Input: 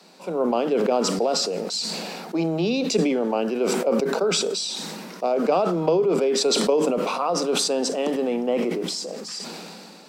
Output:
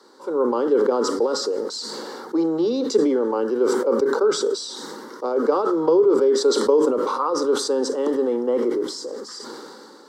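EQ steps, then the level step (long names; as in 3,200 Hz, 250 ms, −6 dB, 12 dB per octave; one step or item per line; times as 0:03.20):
high-pass filter 76 Hz
low-pass filter 3,000 Hz 6 dB per octave
phaser with its sweep stopped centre 680 Hz, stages 6
+5.0 dB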